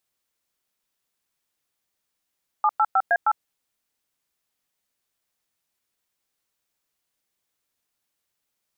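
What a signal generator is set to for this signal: DTMF "785A8", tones 52 ms, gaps 104 ms, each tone -18.5 dBFS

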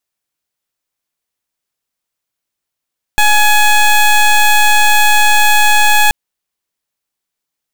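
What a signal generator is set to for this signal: pulse 842 Hz, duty 16% -8 dBFS 2.93 s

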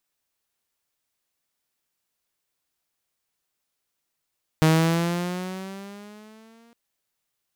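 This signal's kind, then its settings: gliding synth tone saw, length 2.11 s, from 157 Hz, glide +7 st, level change -39 dB, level -11.5 dB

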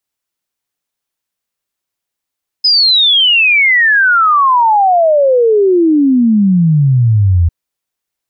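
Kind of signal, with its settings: log sweep 5.1 kHz -> 81 Hz 4.85 s -6 dBFS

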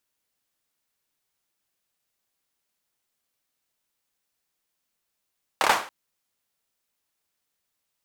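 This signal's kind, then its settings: hand clap length 0.28 s, apart 28 ms, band 960 Hz, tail 0.40 s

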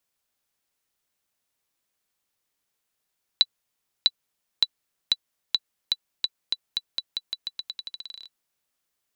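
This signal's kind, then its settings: bouncing ball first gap 0.65 s, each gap 0.87, 3.96 kHz, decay 43 ms -4 dBFS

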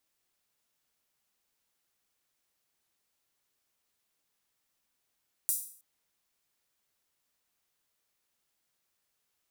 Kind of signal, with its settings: open hi-hat length 0.32 s, high-pass 8.9 kHz, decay 0.51 s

